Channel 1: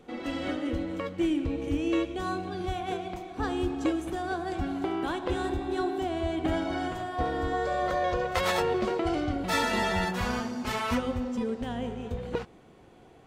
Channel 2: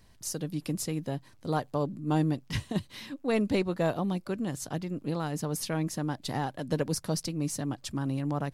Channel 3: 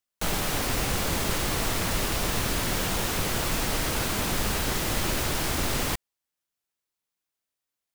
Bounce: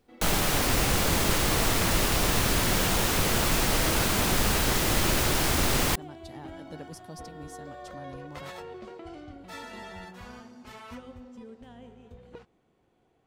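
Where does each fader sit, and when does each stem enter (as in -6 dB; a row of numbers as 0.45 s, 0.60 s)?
-15.0 dB, -14.0 dB, +2.5 dB; 0.00 s, 0.00 s, 0.00 s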